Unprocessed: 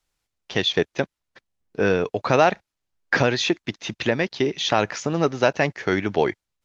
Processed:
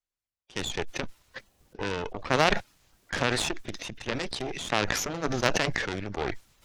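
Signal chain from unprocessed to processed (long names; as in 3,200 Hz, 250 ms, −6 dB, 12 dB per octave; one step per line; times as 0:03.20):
spectral magnitudes quantised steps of 15 dB
harmonic generator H 2 −17 dB, 3 −10 dB, 5 −32 dB, 8 −24 dB, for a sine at −3.5 dBFS
level that may fall only so fast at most 23 dB per second
level −2.5 dB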